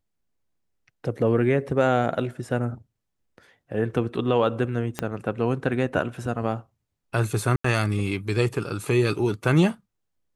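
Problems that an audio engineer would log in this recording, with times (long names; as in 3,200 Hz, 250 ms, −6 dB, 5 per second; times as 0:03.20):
0:04.99: click −11 dBFS
0:07.56–0:07.64: drop-out 84 ms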